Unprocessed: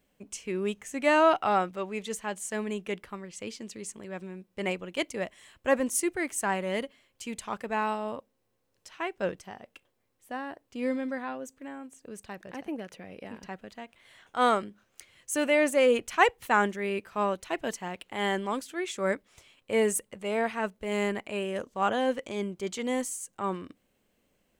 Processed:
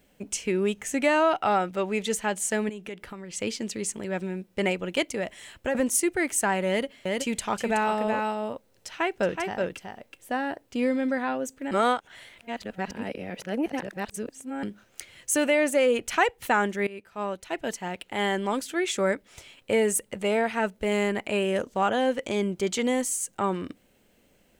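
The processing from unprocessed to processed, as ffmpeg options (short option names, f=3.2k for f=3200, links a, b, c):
-filter_complex "[0:a]asettb=1/sr,asplit=3[a][b][c];[a]atrim=end=2.694[d];[b]atrim=start=2.69:end=3.34,asetpts=PTS-STARTPTS,afade=t=in:d=0.004:c=qsin,afade=t=out:st=0.646:d=0.004:c=qsin,acompressor=threshold=-45dB:ratio=4:attack=3.2:release=140:knee=1:detection=peak[e];[c]atrim=start=3.336[f];[d][e]acrossfade=d=0.004:c1=hsin:c2=qsin[g];[g][f]acrossfade=d=0.004:c1=qsin:c2=hsin,asettb=1/sr,asplit=3[h][i][j];[h]atrim=end=5.104[k];[i]atrim=start=5.1:end=5.75,asetpts=PTS-STARTPTS,afade=t=in:d=0.004:c=qsin,afade=t=out:st=0.646:d=0.004:c=qsin,acompressor=threshold=-35dB:ratio=2.5:attack=3.2:release=140:knee=1:detection=peak[l];[j]atrim=start=5.746[m];[k][l]acrossfade=d=0.004:c1=hsin:c2=qsin[n];[n][m]acrossfade=d=0.004:c1=qsin:c2=hsin,asettb=1/sr,asplit=3[o][p][q];[o]atrim=end=6.684[r];[p]atrim=start=6.68:end=10.42,asetpts=PTS-STARTPTS,afade=t=in:d=0.004:c=qsin,afade=t=out:st=3.736:d=0.004:c=qsin,aecho=1:1:373:0.531,atrim=end_sample=164934[s];[q]atrim=start=10.416[t];[r][s]acrossfade=d=0.004:c1=hsin:c2=qsin[u];[u][t]acrossfade=d=0.004:c1=qsin:c2=hsin,asplit=4[v][w][x][y];[v]atrim=end=11.712[z];[w]atrim=start=11.708:end=14.632,asetpts=PTS-STARTPTS,areverse[aa];[x]atrim=start=14.628:end=16.87,asetpts=PTS-STARTPTS,afade=t=out:st=2.238:d=0.004:c=hsin:silence=0.105925[ab];[y]atrim=start=16.87,asetpts=PTS-STARTPTS,afade=t=in:d=2.12:silence=0.105925[ac];[z][aa]acrossfade=d=0.004:c1=hsin:c2=hsin[ad];[ab][ac]concat=n=2:v=0:a=1[ae];[ad][ae]acrossfade=d=0.004:c1=hsin:c2=hsin,bandreject=f=1.1k:w=8.3,acompressor=threshold=-32dB:ratio=2.5,volume=9dB"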